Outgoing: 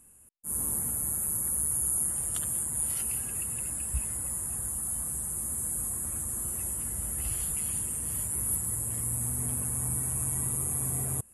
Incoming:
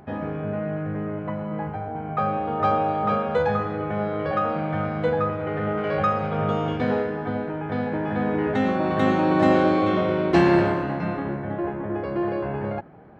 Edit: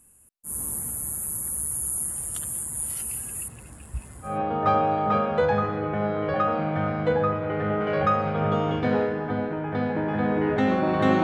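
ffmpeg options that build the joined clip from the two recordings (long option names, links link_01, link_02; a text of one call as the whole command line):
ffmpeg -i cue0.wav -i cue1.wav -filter_complex "[0:a]asettb=1/sr,asplit=3[link_01][link_02][link_03];[link_01]atrim=end=3.484[link_04];[link_02]atrim=start=3.48:end=4.4,asetpts=PTS-STARTPTS,afade=type=in:duration=0.004:curve=qsin,afade=type=out:start_time=0.916:duration=0.004:curve=qsin,adynamicsmooth=sensitivity=2.5:basefreq=3500[link_05];[link_03]atrim=start=4.396[link_06];[link_04][link_05]acrossfade=duration=0.004:curve1=hsin:curve2=qsin[link_07];[link_07][link_06]acrossfade=duration=0.004:curve1=qsin:curve2=hsin,apad=whole_dur=11.23,atrim=end=11.23,atrim=end=4.4,asetpts=PTS-STARTPTS[link_08];[1:a]atrim=start=2.19:end=9.2,asetpts=PTS-STARTPTS[link_09];[link_08][link_09]acrossfade=duration=0.18:curve1=tri:curve2=tri" out.wav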